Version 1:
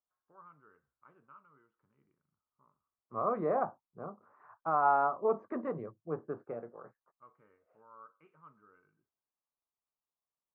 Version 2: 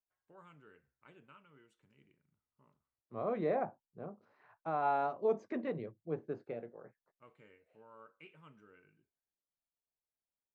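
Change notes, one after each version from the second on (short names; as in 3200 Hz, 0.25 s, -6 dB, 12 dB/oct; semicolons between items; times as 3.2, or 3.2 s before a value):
first voice +6.0 dB; master: remove synth low-pass 1200 Hz, resonance Q 4.5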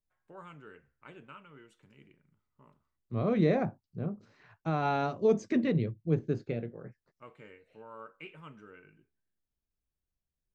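first voice +9.5 dB; second voice: remove band-pass 840 Hz, Q 1.3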